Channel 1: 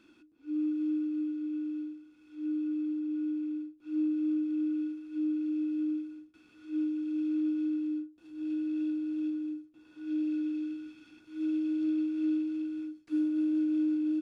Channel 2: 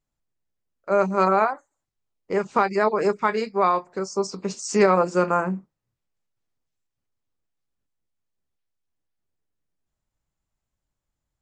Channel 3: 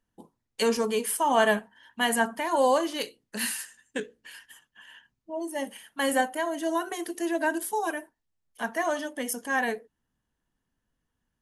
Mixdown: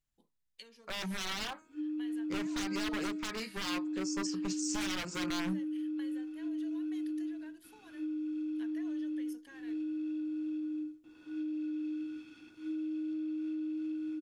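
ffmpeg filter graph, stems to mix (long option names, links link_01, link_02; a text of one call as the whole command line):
ffmpeg -i stem1.wav -i stem2.wav -i stem3.wav -filter_complex "[0:a]alimiter=level_in=5dB:limit=-24dB:level=0:latency=1,volume=-5dB,acompressor=threshold=-36dB:ratio=6,adelay=1300,volume=1dB[link_01];[1:a]bandreject=frequency=470:width=12,bandreject=frequency=315.4:width_type=h:width=4,bandreject=frequency=630.8:width_type=h:width=4,bandreject=frequency=946.2:width_type=h:width=4,bandreject=frequency=1261.6:width_type=h:width=4,bandreject=frequency=1577:width_type=h:width=4,bandreject=frequency=1892.4:width_type=h:width=4,bandreject=frequency=2207.8:width_type=h:width=4,bandreject=frequency=2523.2:width_type=h:width=4,bandreject=frequency=2838.6:width_type=h:width=4,bandreject=frequency=3154:width_type=h:width=4,bandreject=frequency=3469.4:width_type=h:width=4,bandreject=frequency=3784.8:width_type=h:width=4,bandreject=frequency=4100.2:width_type=h:width=4,bandreject=frequency=4415.6:width_type=h:width=4,bandreject=frequency=4731:width_type=h:width=4,aeval=exprs='0.0794*(abs(mod(val(0)/0.0794+3,4)-2)-1)':channel_layout=same,volume=-3dB[link_02];[2:a]equalizer=frequency=250:width_type=o:width=1:gain=5,equalizer=frequency=500:width_type=o:width=1:gain=8,equalizer=frequency=2000:width_type=o:width=1:gain=7,equalizer=frequency=4000:width_type=o:width=1:gain=11,equalizer=frequency=8000:width_type=o:width=1:gain=-5,acompressor=threshold=-27dB:ratio=12,volume=-20dB[link_03];[link_02][link_03]amix=inputs=2:normalize=0,equalizer=frequency=480:width_type=o:width=2.9:gain=-11,alimiter=level_in=4.5dB:limit=-24dB:level=0:latency=1:release=87,volume=-4.5dB,volume=0dB[link_04];[link_01][link_04]amix=inputs=2:normalize=0" out.wav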